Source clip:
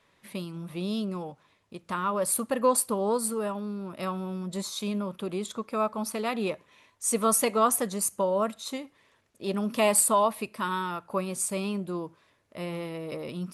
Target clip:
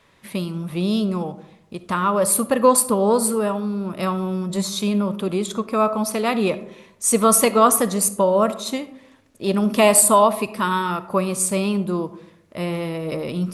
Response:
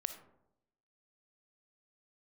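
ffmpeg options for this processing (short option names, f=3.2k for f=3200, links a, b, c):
-filter_complex "[0:a]asplit=2[a][b];[1:a]atrim=start_sample=2205,lowshelf=f=210:g=7[c];[b][c]afir=irnorm=-1:irlink=0,volume=1.5dB[d];[a][d]amix=inputs=2:normalize=0,volume=2dB"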